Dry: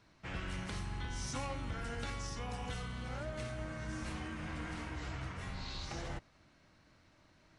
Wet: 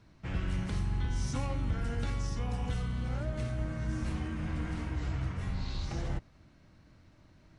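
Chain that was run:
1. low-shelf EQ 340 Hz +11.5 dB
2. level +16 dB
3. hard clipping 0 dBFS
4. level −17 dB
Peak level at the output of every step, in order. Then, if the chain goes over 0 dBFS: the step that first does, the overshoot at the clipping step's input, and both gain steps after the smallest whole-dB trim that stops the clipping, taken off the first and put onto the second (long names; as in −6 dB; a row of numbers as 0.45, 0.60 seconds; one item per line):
−20.5, −4.5, −4.5, −21.5 dBFS
no step passes full scale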